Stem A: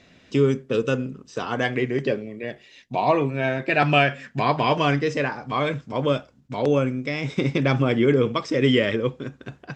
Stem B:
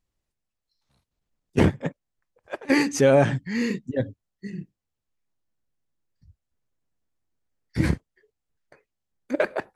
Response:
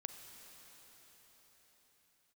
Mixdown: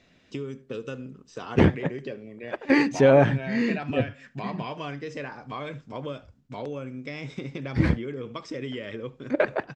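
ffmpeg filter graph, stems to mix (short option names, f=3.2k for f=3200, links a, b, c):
-filter_complex "[0:a]acompressor=threshold=-24dB:ratio=6,volume=-7dB,asplit=2[a][b];[b]volume=-22dB[c];[1:a]lowpass=3.7k,volume=0.5dB[d];[c]aecho=0:1:75:1[e];[a][d][e]amix=inputs=3:normalize=0"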